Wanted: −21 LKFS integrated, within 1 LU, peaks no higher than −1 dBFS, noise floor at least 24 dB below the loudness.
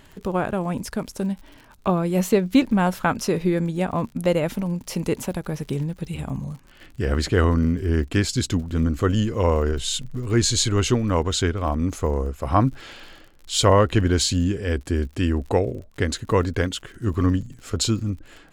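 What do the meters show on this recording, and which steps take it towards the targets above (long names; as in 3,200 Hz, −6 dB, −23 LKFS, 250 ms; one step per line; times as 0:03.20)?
crackle rate 57 per second; integrated loudness −23.0 LKFS; sample peak −4.5 dBFS; target loudness −21.0 LKFS
→ click removal
level +2 dB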